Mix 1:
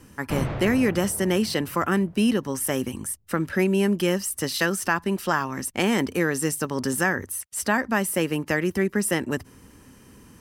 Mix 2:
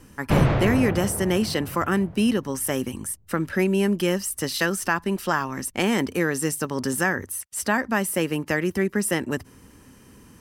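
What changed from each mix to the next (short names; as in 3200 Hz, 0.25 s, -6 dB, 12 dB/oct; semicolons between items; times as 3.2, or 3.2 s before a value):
background +8.5 dB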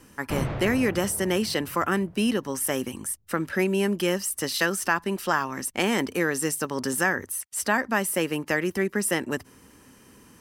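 speech: add low shelf 180 Hz -9 dB; background -9.5 dB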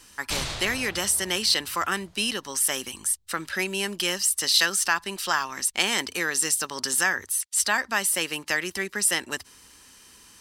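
background: remove LPF 2300 Hz 12 dB/oct; master: add graphic EQ 125/250/500/4000/8000 Hz -10/-8/-6/+10/+6 dB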